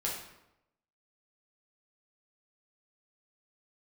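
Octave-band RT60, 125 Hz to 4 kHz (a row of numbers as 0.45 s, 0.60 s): 0.95 s, 0.90 s, 0.90 s, 0.85 s, 0.75 s, 0.60 s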